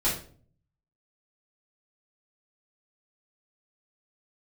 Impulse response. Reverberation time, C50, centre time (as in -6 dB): 0.45 s, 6.0 dB, 32 ms